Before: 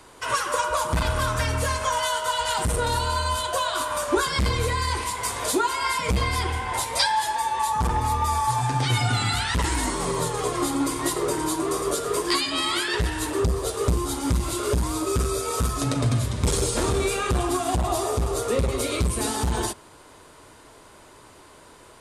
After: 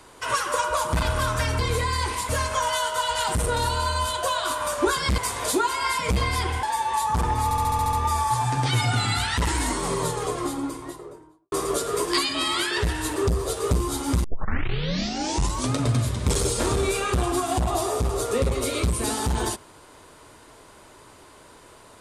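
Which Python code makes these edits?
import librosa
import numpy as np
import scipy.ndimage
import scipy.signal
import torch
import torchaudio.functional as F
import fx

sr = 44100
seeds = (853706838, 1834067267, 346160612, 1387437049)

y = fx.studio_fade_out(x, sr, start_s=10.11, length_s=1.58)
y = fx.edit(y, sr, fx.move(start_s=4.48, length_s=0.7, to_s=1.59),
    fx.cut(start_s=6.63, length_s=0.66),
    fx.stutter(start_s=8.1, slice_s=0.07, count=8),
    fx.tape_start(start_s=14.41, length_s=1.54), tone=tone)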